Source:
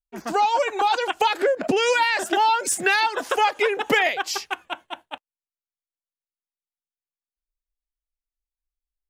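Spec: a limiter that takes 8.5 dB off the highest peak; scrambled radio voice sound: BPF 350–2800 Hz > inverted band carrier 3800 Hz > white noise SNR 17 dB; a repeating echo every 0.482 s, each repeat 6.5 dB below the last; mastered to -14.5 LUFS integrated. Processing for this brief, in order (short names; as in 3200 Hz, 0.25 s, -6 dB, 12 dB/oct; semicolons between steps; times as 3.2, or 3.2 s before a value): limiter -16.5 dBFS; BPF 350–2800 Hz; feedback echo 0.482 s, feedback 47%, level -6.5 dB; inverted band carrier 3800 Hz; white noise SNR 17 dB; gain +9 dB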